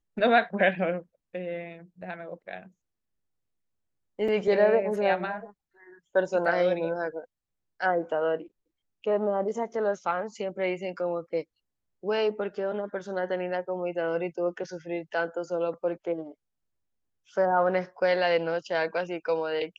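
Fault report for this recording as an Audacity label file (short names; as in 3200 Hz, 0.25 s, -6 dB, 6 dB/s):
4.280000	4.280000	gap 3.9 ms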